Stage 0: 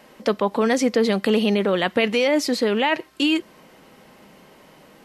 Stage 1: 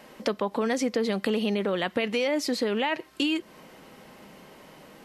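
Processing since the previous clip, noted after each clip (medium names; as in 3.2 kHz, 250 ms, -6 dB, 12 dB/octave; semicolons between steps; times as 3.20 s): compression 2.5:1, threshold -26 dBFS, peak gain reduction 8.5 dB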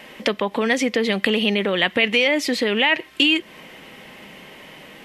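high-order bell 2.5 kHz +8.5 dB 1.2 oct; trim +5 dB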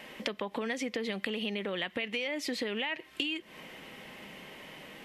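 compression, threshold -25 dBFS, peak gain reduction 12 dB; trim -6 dB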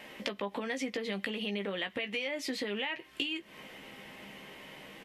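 doubling 15 ms -7 dB; trim -2 dB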